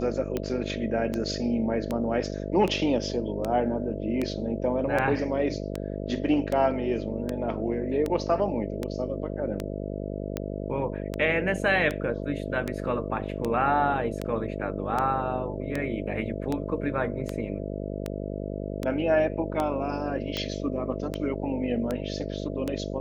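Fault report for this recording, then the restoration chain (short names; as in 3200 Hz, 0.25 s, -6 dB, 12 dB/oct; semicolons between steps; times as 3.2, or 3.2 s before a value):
buzz 50 Hz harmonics 13 -33 dBFS
tick 78 rpm -15 dBFS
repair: de-click; de-hum 50 Hz, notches 13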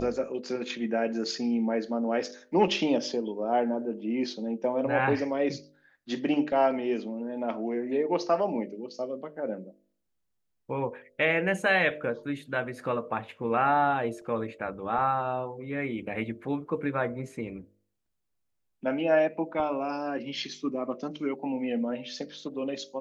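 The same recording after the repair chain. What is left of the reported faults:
none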